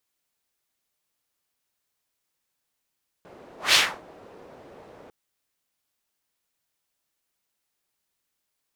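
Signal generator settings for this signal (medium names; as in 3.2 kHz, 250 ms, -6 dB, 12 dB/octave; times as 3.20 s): whoosh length 1.85 s, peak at 0.49 s, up 0.17 s, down 0.30 s, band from 510 Hz, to 3.5 kHz, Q 1.3, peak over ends 31 dB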